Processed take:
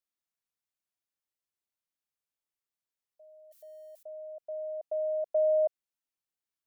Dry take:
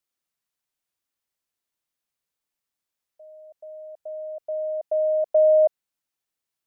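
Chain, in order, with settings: 3.51–4.03 s: zero-crossing glitches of -49.5 dBFS; trim -9 dB

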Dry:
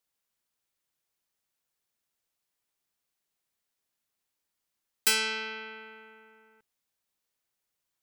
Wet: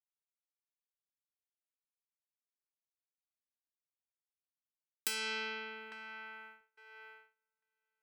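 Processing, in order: compression 16:1, threshold -30 dBFS, peak gain reduction 11.5 dB; feedback echo behind a band-pass 852 ms, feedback 52%, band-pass 1 kHz, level -6 dB; gate -50 dBFS, range -31 dB; trim -2.5 dB

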